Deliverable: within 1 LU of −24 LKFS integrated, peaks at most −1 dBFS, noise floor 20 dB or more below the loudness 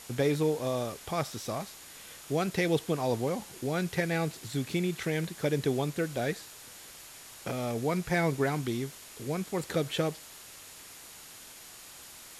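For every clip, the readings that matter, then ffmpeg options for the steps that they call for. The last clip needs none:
interfering tone 6,900 Hz; level of the tone −59 dBFS; background noise floor −49 dBFS; target noise floor −52 dBFS; integrated loudness −31.5 LKFS; sample peak −16.0 dBFS; target loudness −24.0 LKFS
→ -af "bandreject=frequency=6900:width=30"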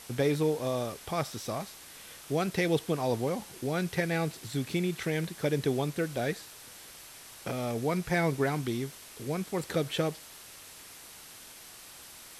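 interfering tone none found; background noise floor −50 dBFS; target noise floor −52 dBFS
→ -af "afftdn=noise_reduction=6:noise_floor=-50"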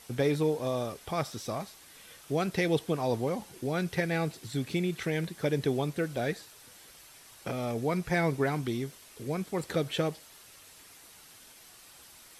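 background noise floor −54 dBFS; integrated loudness −31.5 LKFS; sample peak −16.0 dBFS; target loudness −24.0 LKFS
→ -af "volume=7.5dB"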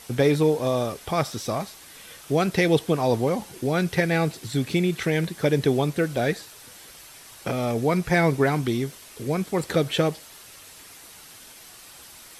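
integrated loudness −24.0 LKFS; sample peak −8.5 dBFS; background noise floor −47 dBFS

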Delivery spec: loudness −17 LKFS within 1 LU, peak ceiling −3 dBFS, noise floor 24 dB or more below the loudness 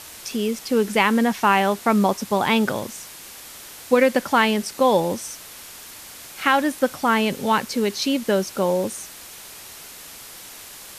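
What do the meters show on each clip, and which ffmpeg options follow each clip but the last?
background noise floor −41 dBFS; target noise floor −45 dBFS; integrated loudness −21.0 LKFS; sample peak −5.5 dBFS; target loudness −17.0 LKFS
→ -af "afftdn=noise_reduction=6:noise_floor=-41"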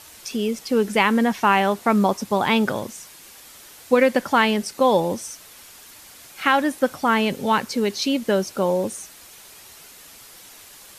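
background noise floor −45 dBFS; integrated loudness −21.0 LKFS; sample peak −5.5 dBFS; target loudness −17.0 LKFS
→ -af "volume=4dB,alimiter=limit=-3dB:level=0:latency=1"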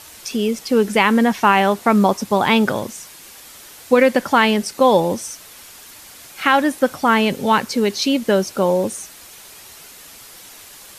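integrated loudness −17.0 LKFS; sample peak −3.0 dBFS; background noise floor −41 dBFS

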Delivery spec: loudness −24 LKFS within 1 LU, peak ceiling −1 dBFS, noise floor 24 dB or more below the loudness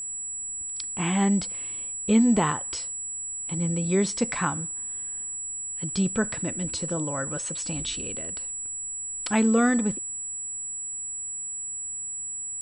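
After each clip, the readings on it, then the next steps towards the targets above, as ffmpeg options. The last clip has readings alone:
interfering tone 7,800 Hz; level of the tone −31 dBFS; integrated loudness −27.0 LKFS; sample peak −10.0 dBFS; target loudness −24.0 LKFS
→ -af "bandreject=frequency=7800:width=30"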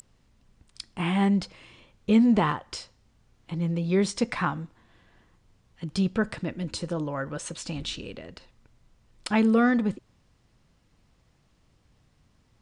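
interfering tone none found; integrated loudness −26.5 LKFS; sample peak −10.5 dBFS; target loudness −24.0 LKFS
→ -af "volume=2.5dB"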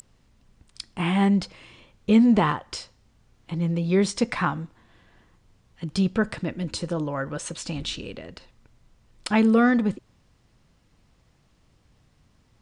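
integrated loudness −24.0 LKFS; sample peak −8.0 dBFS; background noise floor −63 dBFS

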